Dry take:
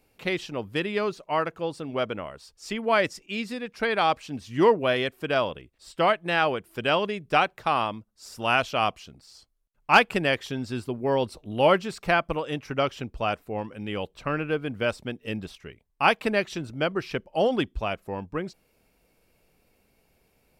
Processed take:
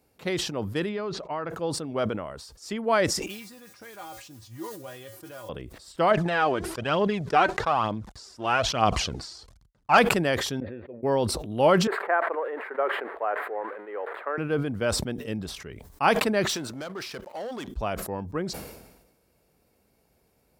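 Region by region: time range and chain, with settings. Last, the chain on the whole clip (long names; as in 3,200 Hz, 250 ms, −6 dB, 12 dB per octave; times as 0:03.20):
0:00.89–0:01.50: low-pass filter 3,700 Hz + downward compressor 4 to 1, threshold −27 dBFS
0:03.26–0:05.49: noise that follows the level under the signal 13 dB + downward compressor 2.5 to 1, threshold −31 dBFS + tuned comb filter 110 Hz, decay 0.15 s, harmonics odd, mix 90%
0:06.11–0:09.98: mu-law and A-law mismatch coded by A + phase shifter 1.1 Hz, delay 3.3 ms, feedback 52% + high-frequency loss of the air 73 metres
0:10.60–0:11.03: formant resonators in series e + low-shelf EQ 80 Hz −11 dB
0:11.87–0:14.38: spike at every zero crossing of −24 dBFS + elliptic band-pass filter 400–1,900 Hz, stop band 50 dB
0:16.49–0:17.68: high-pass filter 750 Hz 6 dB per octave + downward compressor 2.5 to 1, threshold −45 dBFS + leveller curve on the samples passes 3
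whole clip: high-pass filter 41 Hz 24 dB per octave; parametric band 2,600 Hz −7.5 dB 0.83 octaves; level that may fall only so fast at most 52 dB per second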